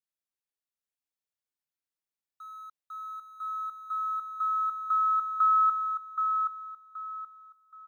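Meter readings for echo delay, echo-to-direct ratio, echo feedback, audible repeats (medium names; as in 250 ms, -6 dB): 775 ms, -5.0 dB, 29%, 3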